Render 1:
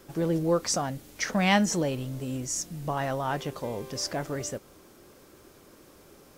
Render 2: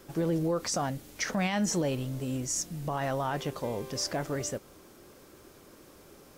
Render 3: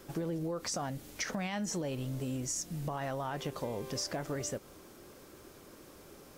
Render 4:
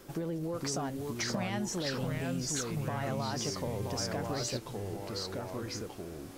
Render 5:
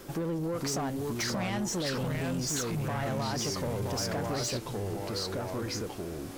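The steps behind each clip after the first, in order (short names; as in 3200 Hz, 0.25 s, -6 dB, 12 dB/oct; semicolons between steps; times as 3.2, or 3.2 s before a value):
limiter -21 dBFS, peak gain reduction 11.5 dB
compressor, threshold -33 dBFS, peak gain reduction 8 dB
echoes that change speed 0.431 s, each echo -3 st, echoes 2
soft clip -33 dBFS, distortion -13 dB; gain +6 dB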